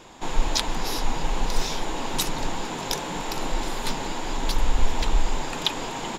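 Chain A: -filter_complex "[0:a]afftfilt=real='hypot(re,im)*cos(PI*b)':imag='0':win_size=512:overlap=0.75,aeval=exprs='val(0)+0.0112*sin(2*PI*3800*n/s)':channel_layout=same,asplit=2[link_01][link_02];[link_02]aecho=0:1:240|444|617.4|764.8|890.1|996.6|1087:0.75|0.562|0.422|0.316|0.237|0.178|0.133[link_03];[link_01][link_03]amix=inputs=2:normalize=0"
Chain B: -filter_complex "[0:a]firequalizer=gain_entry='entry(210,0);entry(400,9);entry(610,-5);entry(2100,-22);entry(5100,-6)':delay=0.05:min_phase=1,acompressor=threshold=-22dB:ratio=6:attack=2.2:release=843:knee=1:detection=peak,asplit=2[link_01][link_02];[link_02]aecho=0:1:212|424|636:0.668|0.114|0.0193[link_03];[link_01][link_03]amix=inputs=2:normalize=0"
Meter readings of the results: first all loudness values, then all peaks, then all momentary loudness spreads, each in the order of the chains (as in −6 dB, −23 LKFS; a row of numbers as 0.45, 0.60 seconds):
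−26.5, −32.5 LKFS; −3.0, −15.5 dBFS; 1, 5 LU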